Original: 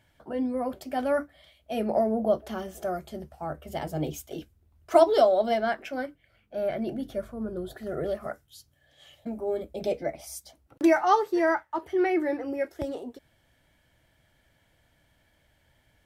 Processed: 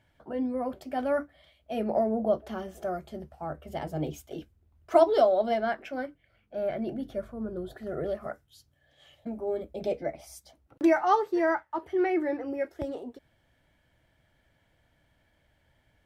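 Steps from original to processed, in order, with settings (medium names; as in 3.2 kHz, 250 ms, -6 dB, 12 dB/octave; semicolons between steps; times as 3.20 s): treble shelf 4.3 kHz -8 dB; trim -1.5 dB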